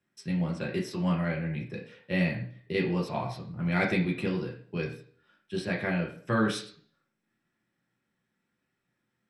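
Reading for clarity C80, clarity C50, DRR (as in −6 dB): 12.0 dB, 8.0 dB, −2.5 dB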